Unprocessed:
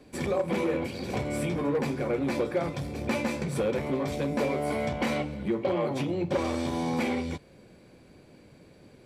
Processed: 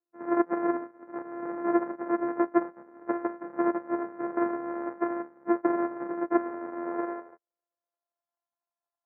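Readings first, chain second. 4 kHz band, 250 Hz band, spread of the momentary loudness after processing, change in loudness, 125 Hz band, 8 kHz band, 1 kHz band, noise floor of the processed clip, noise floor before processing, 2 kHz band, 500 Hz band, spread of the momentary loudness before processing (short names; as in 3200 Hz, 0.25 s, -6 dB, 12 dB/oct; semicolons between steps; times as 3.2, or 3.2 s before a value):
under -35 dB, +0.5 dB, 9 LU, -0.5 dB, under -20 dB, under -35 dB, +2.5 dB, under -85 dBFS, -55 dBFS, -5.0 dB, -2.0 dB, 4 LU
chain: sample sorter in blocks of 128 samples; steep low-pass 1900 Hz 48 dB/oct; bell 940 Hz +8 dB 2.5 oct; high-pass sweep 320 Hz -> 780 Hz, 6.75–8.39; upward expander 2.5:1, over -43 dBFS; gain -4 dB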